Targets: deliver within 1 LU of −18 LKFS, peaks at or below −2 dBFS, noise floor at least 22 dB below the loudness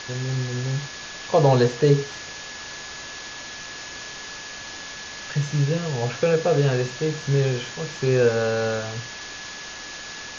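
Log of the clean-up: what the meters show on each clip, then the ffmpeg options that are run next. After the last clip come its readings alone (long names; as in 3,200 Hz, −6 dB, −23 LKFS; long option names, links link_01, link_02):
interfering tone 1,700 Hz; level of the tone −40 dBFS; background noise floor −37 dBFS; target noise floor −47 dBFS; integrated loudness −25.0 LKFS; sample peak −5.5 dBFS; target loudness −18.0 LKFS
→ -af "bandreject=frequency=1700:width=30"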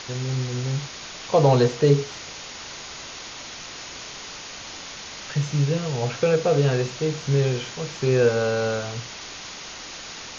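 interfering tone none found; background noise floor −38 dBFS; target noise floor −45 dBFS
→ -af "afftdn=noise_reduction=7:noise_floor=-38"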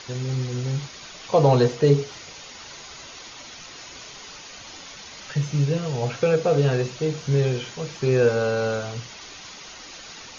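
background noise floor −42 dBFS; target noise floor −45 dBFS
→ -af "afftdn=noise_reduction=6:noise_floor=-42"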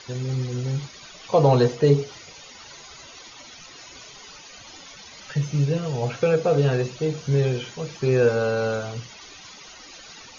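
background noise floor −45 dBFS; integrated loudness −23.0 LKFS; sample peak −6.0 dBFS; target loudness −18.0 LKFS
→ -af "volume=5dB,alimiter=limit=-2dB:level=0:latency=1"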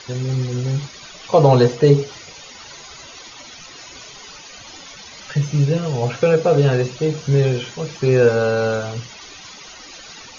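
integrated loudness −18.0 LKFS; sample peak −2.0 dBFS; background noise floor −40 dBFS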